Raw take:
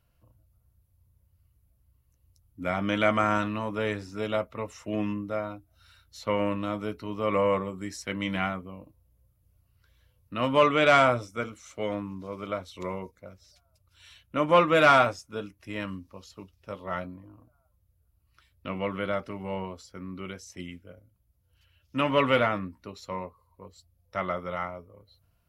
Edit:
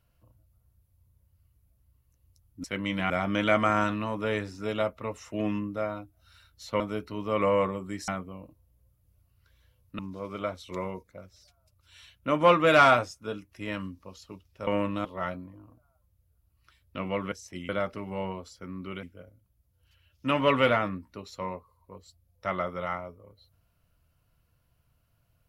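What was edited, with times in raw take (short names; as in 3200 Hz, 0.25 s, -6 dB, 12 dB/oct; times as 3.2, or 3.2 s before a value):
6.34–6.72 move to 16.75
8–8.46 move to 2.64
10.37–12.07 cut
20.36–20.73 move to 19.02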